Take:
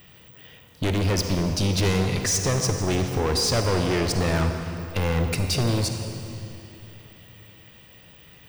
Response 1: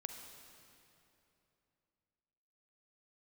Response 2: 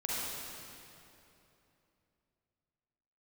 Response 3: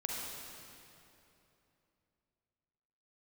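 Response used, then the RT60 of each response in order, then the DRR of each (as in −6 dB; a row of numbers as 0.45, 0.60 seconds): 1; 3.0, 3.0, 3.0 seconds; 4.5, −7.0, −3.0 decibels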